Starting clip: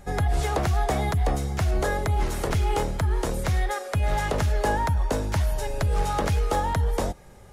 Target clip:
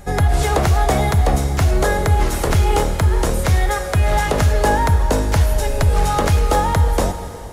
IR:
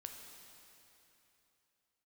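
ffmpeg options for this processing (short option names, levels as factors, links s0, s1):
-filter_complex "[0:a]asplit=2[s0][s1];[1:a]atrim=start_sample=2205,highshelf=f=6900:g=6[s2];[s1][s2]afir=irnorm=-1:irlink=0,volume=1.78[s3];[s0][s3]amix=inputs=2:normalize=0,volume=1.26"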